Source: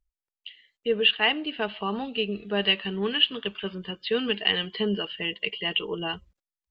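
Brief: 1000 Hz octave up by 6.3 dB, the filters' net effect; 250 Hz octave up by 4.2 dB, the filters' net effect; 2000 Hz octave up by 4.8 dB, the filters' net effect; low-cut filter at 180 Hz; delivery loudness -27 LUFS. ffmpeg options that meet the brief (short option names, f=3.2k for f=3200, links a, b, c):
-af "highpass=180,equalizer=f=250:t=o:g=7,equalizer=f=1k:t=o:g=6.5,equalizer=f=2k:t=o:g=5,volume=-4dB"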